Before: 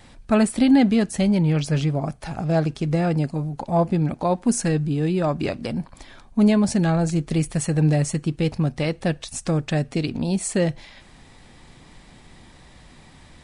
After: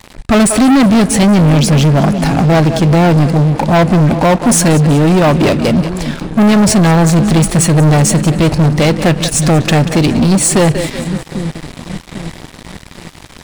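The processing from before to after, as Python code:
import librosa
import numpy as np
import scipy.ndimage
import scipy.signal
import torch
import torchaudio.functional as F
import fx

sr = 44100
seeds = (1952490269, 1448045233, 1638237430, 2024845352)

y = fx.echo_split(x, sr, split_hz=320.0, low_ms=798, high_ms=186, feedback_pct=52, wet_db=-15.5)
y = fx.leveller(y, sr, passes=5)
y = y * librosa.db_to_amplitude(1.0)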